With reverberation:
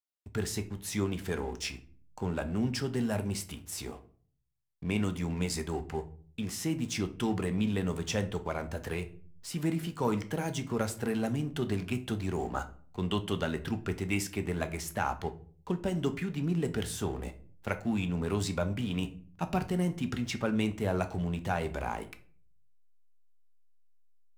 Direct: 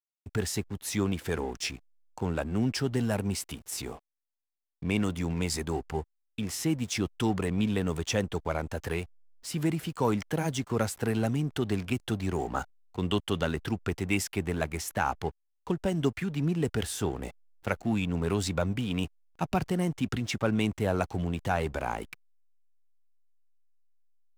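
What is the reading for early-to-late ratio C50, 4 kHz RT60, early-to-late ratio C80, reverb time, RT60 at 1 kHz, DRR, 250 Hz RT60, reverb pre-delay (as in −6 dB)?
15.5 dB, 0.30 s, 20.0 dB, 0.50 s, 0.40 s, 8.0 dB, 0.70 s, 5 ms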